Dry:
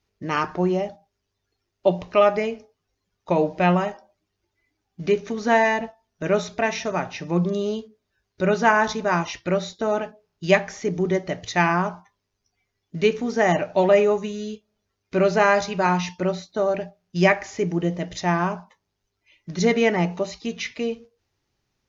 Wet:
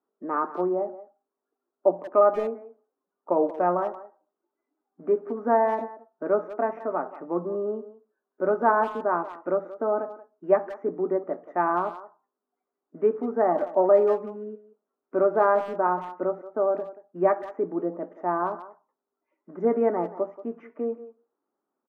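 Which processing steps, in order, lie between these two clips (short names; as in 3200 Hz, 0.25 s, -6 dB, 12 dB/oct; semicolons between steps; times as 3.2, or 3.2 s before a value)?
elliptic band-pass 250–1300 Hz, stop band 50 dB; speakerphone echo 0.18 s, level -15 dB; gain -1.5 dB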